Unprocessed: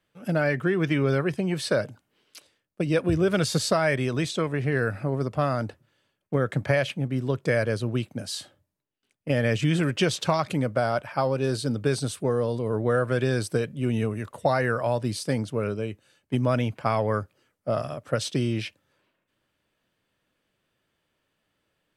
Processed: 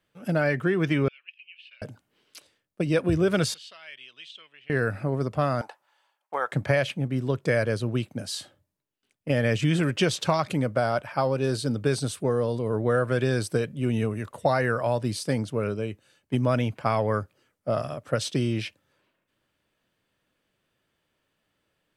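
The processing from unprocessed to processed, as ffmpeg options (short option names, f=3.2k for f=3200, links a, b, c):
-filter_complex "[0:a]asettb=1/sr,asplit=3[a][b][c];[a]atrim=end=1.084[d];[b]atrim=start=1.08:end=1.82,asetpts=PTS-STARTPTS,afade=t=in:d=0.004:c=qsin,afade=t=out:st=0.736:d=0.004:c=qsin,asuperpass=centerf=2700:order=4:qfactor=5.4[e];[c]atrim=start=1.816[f];[d][e]acrossfade=d=0.004:c1=hsin:c2=qsin[g];[g][f]acrossfade=d=0.004:c1=qsin:c2=hsin,asettb=1/sr,asplit=3[h][i][j];[h]atrim=end=3.544[k];[i]atrim=start=3.54:end=4.7,asetpts=PTS-STARTPTS,afade=t=in:d=0.004:c=qsin,afade=t=out:st=1.156:d=0.004:c=qsin,bandpass=f=3k:t=q:w=7.5[l];[j]atrim=start=4.696[m];[k][l]acrossfade=d=0.004:c1=hsin:c2=qsin[n];[n][m]acrossfade=d=0.004:c1=qsin:c2=hsin,asettb=1/sr,asplit=3[o][p][q];[o]atrim=end=5.614[r];[p]atrim=start=5.61:end=6.52,asetpts=PTS-STARTPTS,afade=t=in:d=0.004:c=qsin,afade=t=out:st=0.906:d=0.004:c=qsin,highpass=f=860:t=q:w=4.7[s];[q]atrim=start=6.516[t];[r][s]acrossfade=d=0.004:c1=hsin:c2=qsin[u];[u][t]acrossfade=d=0.004:c1=qsin:c2=hsin"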